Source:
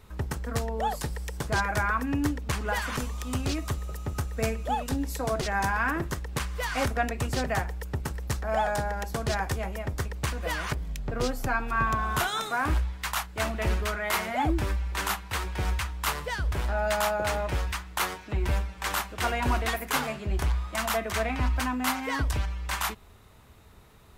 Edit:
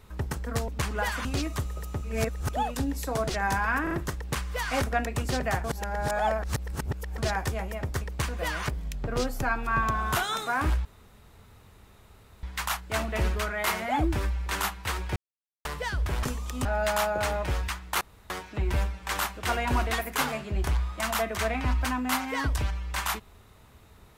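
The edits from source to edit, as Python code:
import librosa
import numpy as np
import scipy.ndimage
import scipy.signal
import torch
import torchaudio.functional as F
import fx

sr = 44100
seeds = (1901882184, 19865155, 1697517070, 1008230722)

y = fx.edit(x, sr, fx.cut(start_s=0.68, length_s=1.7),
    fx.move(start_s=2.95, length_s=0.42, to_s=16.69),
    fx.reverse_span(start_s=4.16, length_s=0.47),
    fx.stutter(start_s=5.95, slice_s=0.04, count=3),
    fx.reverse_span(start_s=7.68, length_s=1.54),
    fx.insert_room_tone(at_s=12.89, length_s=1.58),
    fx.silence(start_s=15.62, length_s=0.49),
    fx.insert_room_tone(at_s=18.05, length_s=0.29), tone=tone)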